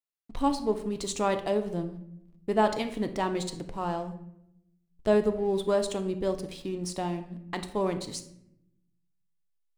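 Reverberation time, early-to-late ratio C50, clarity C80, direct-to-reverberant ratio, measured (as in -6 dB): 0.75 s, 11.0 dB, 14.0 dB, 7.0 dB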